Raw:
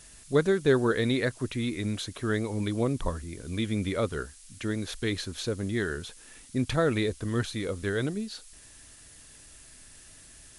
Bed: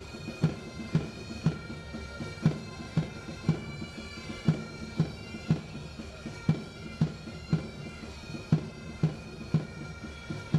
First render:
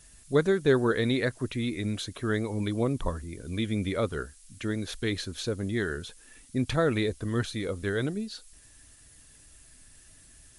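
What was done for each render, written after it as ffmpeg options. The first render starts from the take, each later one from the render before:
ffmpeg -i in.wav -af "afftdn=noise_reduction=6:noise_floor=-52" out.wav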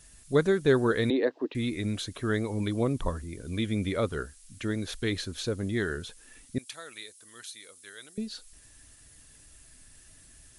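ffmpeg -i in.wav -filter_complex "[0:a]asettb=1/sr,asplit=3[link_01][link_02][link_03];[link_01]atrim=end=1.104[link_04];[link_02]atrim=start=1.1:end=1.55,asetpts=PTS-STARTPTS,afade=type=in:duration=0.004:curve=qsin,afade=type=out:start_time=0.446:duration=0.004:curve=qsin,highpass=frequency=270:width=0.5412,highpass=frequency=270:width=1.3066,equalizer=frequency=300:width_type=q:width=4:gain=8,equalizer=frequency=460:width_type=q:width=4:gain=5,equalizer=frequency=820:width_type=q:width=4:gain=5,equalizer=frequency=1400:width_type=q:width=4:gain=-10,equalizer=frequency=2200:width_type=q:width=4:gain=-9,equalizer=frequency=3300:width_type=q:width=4:gain=-5,lowpass=frequency=3600:width=0.5412,lowpass=frequency=3600:width=1.3066[link_05];[link_03]atrim=start=1.546[link_06];[link_04][link_05]acrossfade=duration=0.004:curve1=hsin:curve2=qsin[link_07];[link_07][link_06]acrossfade=duration=0.004:curve1=qsin:curve2=hsin,asettb=1/sr,asplit=3[link_08][link_09][link_10];[link_08]atrim=end=6.584[link_11];[link_09]atrim=start=6.58:end=8.18,asetpts=PTS-STARTPTS,afade=type=in:duration=0.004:curve=qsin,afade=type=out:start_time=1.596:duration=0.004:curve=qsin,aderivative[link_12];[link_10]atrim=start=8.176[link_13];[link_11][link_12]acrossfade=duration=0.004:curve1=hsin:curve2=qsin[link_14];[link_14][link_13]acrossfade=duration=0.004:curve1=qsin:curve2=hsin" out.wav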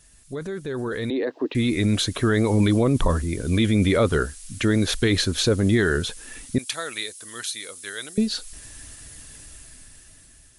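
ffmpeg -i in.wav -af "alimiter=limit=-24dB:level=0:latency=1:release=13,dynaudnorm=framelen=590:gausssize=5:maxgain=13dB" out.wav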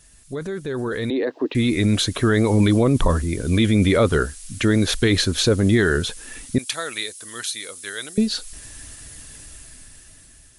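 ffmpeg -i in.wav -af "volume=2.5dB" out.wav

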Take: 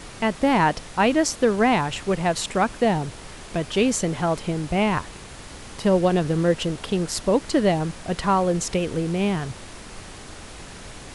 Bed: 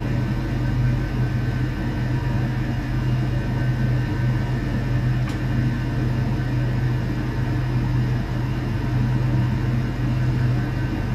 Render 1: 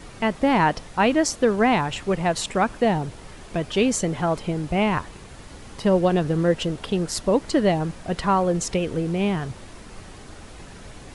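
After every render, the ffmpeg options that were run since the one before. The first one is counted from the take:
ffmpeg -i in.wav -af "afftdn=noise_reduction=6:noise_floor=-41" out.wav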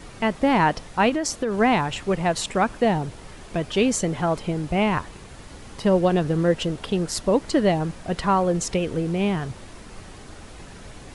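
ffmpeg -i in.wav -filter_complex "[0:a]asettb=1/sr,asplit=3[link_01][link_02][link_03];[link_01]atrim=end=1.094[link_04];[link_02]atrim=start=1.09:end=1.57,asetpts=PTS-STARTPTS,afade=type=in:duration=0.004:curve=qsin,afade=type=out:start_time=0.476:duration=0.004:curve=qsin,acompressor=threshold=-20dB:ratio=6:attack=3.2:release=140:knee=1:detection=peak[link_05];[link_03]atrim=start=1.566[link_06];[link_04][link_05]acrossfade=duration=0.004:curve1=hsin:curve2=qsin[link_07];[link_07][link_06]acrossfade=duration=0.004:curve1=qsin:curve2=hsin" out.wav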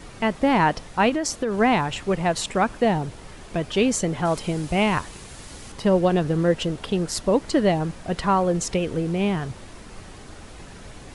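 ffmpeg -i in.wav -filter_complex "[0:a]asettb=1/sr,asplit=3[link_01][link_02][link_03];[link_01]atrim=end=4.254[link_04];[link_02]atrim=start=4.25:end=5.72,asetpts=PTS-STARTPTS,afade=type=in:duration=0.004:curve=qsin,afade=type=out:start_time=1.466:duration=0.004:curve=qsin,highshelf=frequency=3800:gain=9.5[link_05];[link_03]atrim=start=5.716[link_06];[link_04][link_05]acrossfade=duration=0.004:curve1=hsin:curve2=qsin[link_07];[link_07][link_06]acrossfade=duration=0.004:curve1=qsin:curve2=hsin" out.wav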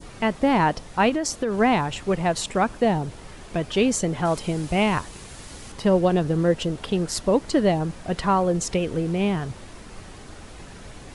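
ffmpeg -i in.wav -af "adynamicequalizer=threshold=0.02:dfrequency=2000:dqfactor=0.75:tfrequency=2000:tqfactor=0.75:attack=5:release=100:ratio=0.375:range=2.5:mode=cutabove:tftype=bell" out.wav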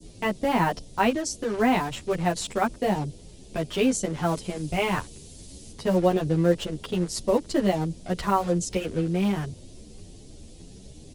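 ffmpeg -i in.wav -filter_complex "[0:a]acrossover=split=140|580|3100[link_01][link_02][link_03][link_04];[link_03]acrusher=bits=5:mix=0:aa=0.5[link_05];[link_01][link_02][link_05][link_04]amix=inputs=4:normalize=0,asplit=2[link_06][link_07];[link_07]adelay=9.9,afreqshift=1.9[link_08];[link_06][link_08]amix=inputs=2:normalize=1" out.wav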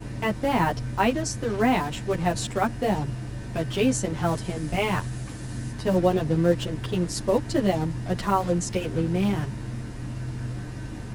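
ffmpeg -i in.wav -i bed.wav -filter_complex "[1:a]volume=-12dB[link_01];[0:a][link_01]amix=inputs=2:normalize=0" out.wav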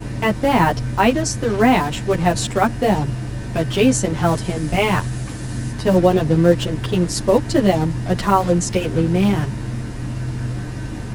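ffmpeg -i in.wav -af "volume=7.5dB,alimiter=limit=-1dB:level=0:latency=1" out.wav

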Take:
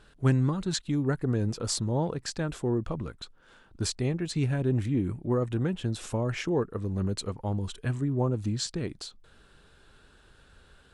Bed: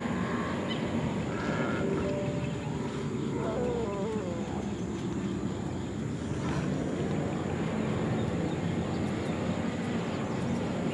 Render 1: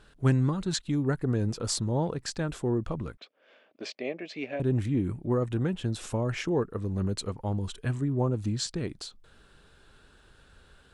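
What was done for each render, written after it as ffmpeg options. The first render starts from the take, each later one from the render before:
ffmpeg -i in.wav -filter_complex "[0:a]asettb=1/sr,asplit=3[link_01][link_02][link_03];[link_01]atrim=end=3.174[link_04];[link_02]atrim=start=3.17:end=4.6,asetpts=PTS-STARTPTS,afade=type=in:duration=0.004:curve=qsin,afade=type=out:start_time=1.426:duration=0.004:curve=qsin,highpass=frequency=290:width=0.5412,highpass=frequency=290:width=1.3066,equalizer=frequency=350:width_type=q:width=4:gain=-6,equalizer=frequency=610:width_type=q:width=4:gain=10,equalizer=frequency=920:width_type=q:width=4:gain=-8,equalizer=frequency=1400:width_type=q:width=4:gain=-9,equalizer=frequency=2300:width_type=q:width=4:gain=7,equalizer=frequency=4000:width_type=q:width=4:gain=-7,lowpass=frequency=4500:width=0.5412,lowpass=frequency=4500:width=1.3066[link_05];[link_03]atrim=start=4.596[link_06];[link_04][link_05]acrossfade=duration=0.004:curve1=hsin:curve2=qsin[link_07];[link_07][link_06]acrossfade=duration=0.004:curve1=qsin:curve2=hsin" out.wav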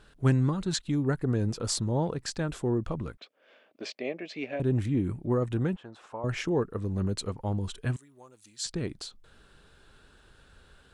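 ffmpeg -i in.wav -filter_complex "[0:a]asettb=1/sr,asplit=3[link_01][link_02][link_03];[link_01]atrim=end=5.764[link_04];[link_02]atrim=start=5.76:end=6.24,asetpts=PTS-STARTPTS,afade=type=in:duration=0.004:curve=qsin,afade=type=out:start_time=0.476:duration=0.004:curve=qsin,bandpass=frequency=970:width_type=q:width=1.5[link_05];[link_03]atrim=start=6.236[link_06];[link_04][link_05]acrossfade=duration=0.004:curve1=hsin:curve2=qsin[link_07];[link_07][link_06]acrossfade=duration=0.004:curve1=qsin:curve2=hsin,asettb=1/sr,asplit=3[link_08][link_09][link_10];[link_08]atrim=end=7.964[link_11];[link_09]atrim=start=7.96:end=8.64,asetpts=PTS-STARTPTS,afade=type=in:duration=0.004:curve=qsin,afade=type=out:start_time=0.676:duration=0.004:curve=qsin,aderivative[link_12];[link_10]atrim=start=8.636[link_13];[link_11][link_12]acrossfade=duration=0.004:curve1=hsin:curve2=qsin[link_14];[link_14][link_13]acrossfade=duration=0.004:curve1=qsin:curve2=hsin" out.wav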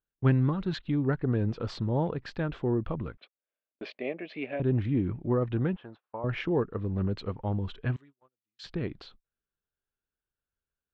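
ffmpeg -i in.wav -af "agate=range=-37dB:threshold=-47dB:ratio=16:detection=peak,lowpass=frequency=3400:width=0.5412,lowpass=frequency=3400:width=1.3066" out.wav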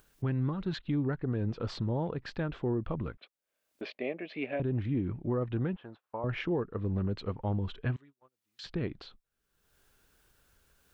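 ffmpeg -i in.wav -af "alimiter=limit=-22.5dB:level=0:latency=1:release=336,acompressor=mode=upward:threshold=-46dB:ratio=2.5" out.wav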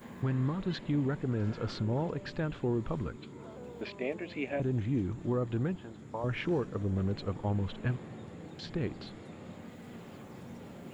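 ffmpeg -i in.wav -i bed.wav -filter_complex "[1:a]volume=-15.5dB[link_01];[0:a][link_01]amix=inputs=2:normalize=0" out.wav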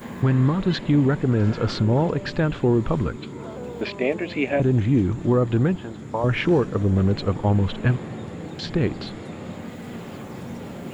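ffmpeg -i in.wav -af "volume=12dB" out.wav

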